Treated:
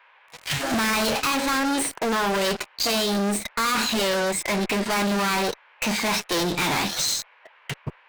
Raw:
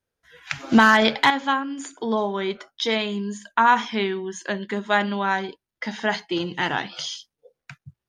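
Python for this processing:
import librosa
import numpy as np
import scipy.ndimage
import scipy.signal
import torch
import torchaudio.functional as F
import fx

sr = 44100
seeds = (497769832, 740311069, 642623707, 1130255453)

y = fx.fuzz(x, sr, gain_db=40.0, gate_db=-44.0)
y = fx.dmg_noise_band(y, sr, seeds[0], low_hz=520.0, high_hz=2100.0, level_db=-47.0)
y = fx.formant_shift(y, sr, semitones=4)
y = F.gain(torch.from_numpy(y), -8.5).numpy()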